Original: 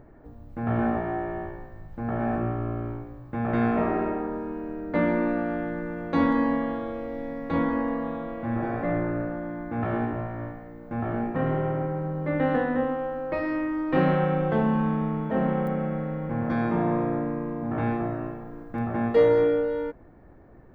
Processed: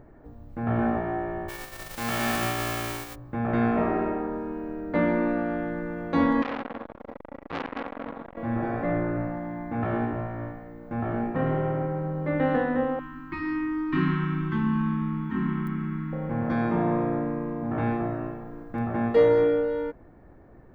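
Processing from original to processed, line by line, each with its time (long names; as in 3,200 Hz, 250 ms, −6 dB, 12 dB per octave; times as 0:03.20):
0:01.48–0:03.14: spectral envelope flattened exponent 0.3
0:06.42–0:08.37: saturating transformer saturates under 1,900 Hz
0:09.15–0:09.75: double-tracking delay 16 ms −5.5 dB
0:12.99–0:16.13: elliptic band-stop filter 360–970 Hz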